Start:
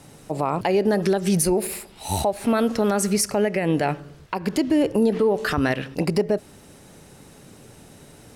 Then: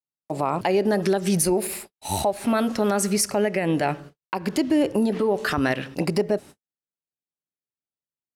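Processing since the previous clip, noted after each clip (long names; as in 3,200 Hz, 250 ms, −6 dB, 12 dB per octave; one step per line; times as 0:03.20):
noise gate −38 dBFS, range −58 dB
low-shelf EQ 93 Hz −8.5 dB
notch filter 460 Hz, Q 12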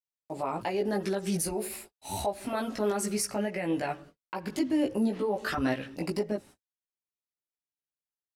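multi-voice chorus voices 6, 0.76 Hz, delay 17 ms, depth 2.2 ms
level −5 dB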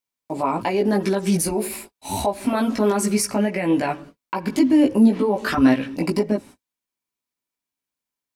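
hollow resonant body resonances 250/990/2,300 Hz, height 8 dB, ringing for 35 ms
level +7.5 dB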